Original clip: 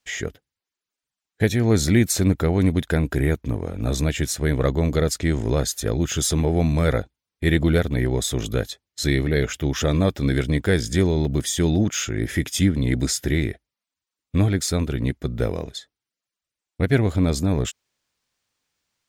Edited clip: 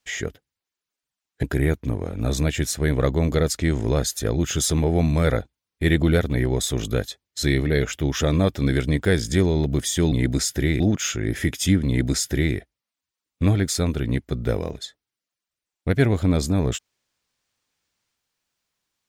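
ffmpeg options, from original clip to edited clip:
-filter_complex "[0:a]asplit=4[a][b][c][d];[a]atrim=end=1.432[e];[b]atrim=start=3.038:end=11.732[f];[c]atrim=start=12.798:end=13.482[g];[d]atrim=start=11.728[h];[e][f]acrossfade=d=0.004:c1=hsin:c2=hsin[i];[i][g]acrossfade=d=0.004:c1=hsin:c2=hsin[j];[j][h]acrossfade=d=0.004:c1=hsin:c2=hsin"

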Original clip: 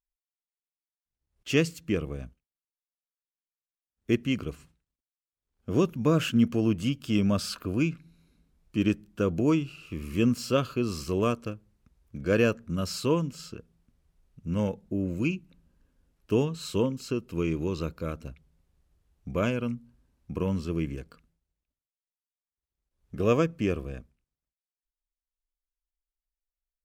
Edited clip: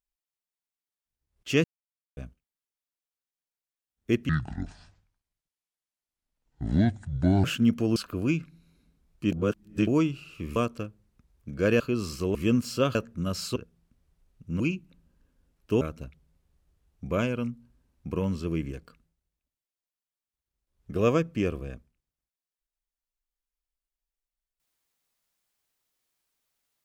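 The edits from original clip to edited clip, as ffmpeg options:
-filter_complex "[0:a]asplit=15[a][b][c][d][e][f][g][h][i][j][k][l][m][n][o];[a]atrim=end=1.64,asetpts=PTS-STARTPTS,afade=t=out:st=1.636:d=0.004:c=hsin[p];[b]atrim=start=1.64:end=2.17,asetpts=PTS-STARTPTS,volume=0[q];[c]atrim=start=2.17:end=4.294,asetpts=PTS-STARTPTS,afade=t=in:d=0.004:c=hsin[r];[d]atrim=start=4.29:end=6.18,asetpts=PTS-STARTPTS,asetrate=26460,aresample=44100[s];[e]atrim=start=6.176:end=6.702[t];[f]atrim=start=7.478:end=8.842[u];[g]atrim=start=8.838:end=9.392,asetpts=PTS-STARTPTS,areverse[v];[h]atrim=start=9.388:end=10.082[w];[i]atrim=start=11.228:end=12.472[x];[j]atrim=start=10.678:end=11.232[y];[k]atrim=start=10.078:end=10.682[z];[l]atrim=start=12.468:end=13.082[aa];[m]atrim=start=13.528:end=14.572[ab];[n]atrim=start=15.198:end=16.412[ac];[o]atrim=start=18.048[ad];[p][q][r]concat=n=3:v=0:a=1[ae];[ae][s]acrossfade=d=0.004:c1=hsin:c2=hsin[af];[af][t]acrossfade=d=0.004:c1=hsin:c2=hsin[ag];[ag][u]acrossfade=d=0.004:c1=hsin:c2=hsin[ah];[ah][v]acrossfade=d=0.004:c1=hsin:c2=hsin[ai];[ai][w]acrossfade=d=0.004:c1=hsin:c2=hsin[aj];[aj][x]acrossfade=d=0.004:c1=hsin:c2=hsin[ak];[ak][y]acrossfade=d=0.004:c1=hsin:c2=hsin[al];[al][z]acrossfade=d=0.004:c1=hsin:c2=hsin[am];[am][aa]acrossfade=d=0.004:c1=hsin:c2=hsin[an];[an][ab]acrossfade=d=0.004:c1=hsin:c2=hsin[ao];[ao][ac]acrossfade=d=0.004:c1=hsin:c2=hsin[ap];[ap][ad]acrossfade=d=0.004:c1=hsin:c2=hsin"

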